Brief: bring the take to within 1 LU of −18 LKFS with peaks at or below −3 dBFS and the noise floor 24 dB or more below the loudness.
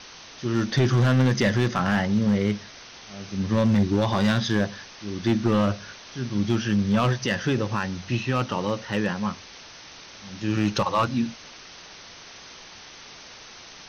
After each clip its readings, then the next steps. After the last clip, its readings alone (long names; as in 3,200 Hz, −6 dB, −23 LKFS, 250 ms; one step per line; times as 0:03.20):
share of clipped samples 1.2%; peaks flattened at −14.5 dBFS; background noise floor −45 dBFS; target noise floor −49 dBFS; integrated loudness −24.5 LKFS; sample peak −14.5 dBFS; target loudness −18.0 LKFS
→ clipped peaks rebuilt −14.5 dBFS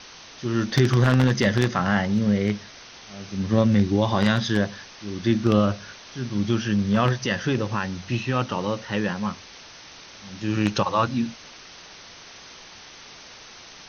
share of clipped samples 0.0%; background noise floor −45 dBFS; target noise floor −48 dBFS
→ broadband denoise 6 dB, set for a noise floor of −45 dBFS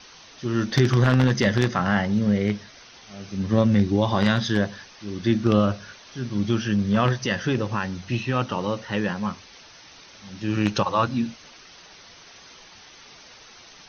background noise floor −48 dBFS; integrated loudness −23.5 LKFS; sample peak −5.5 dBFS; target loudness −18.0 LKFS
→ level +5.5 dB
brickwall limiter −3 dBFS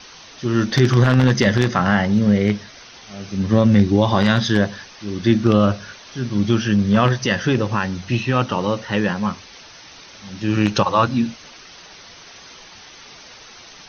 integrated loudness −18.5 LKFS; sample peak −3.0 dBFS; background noise floor −43 dBFS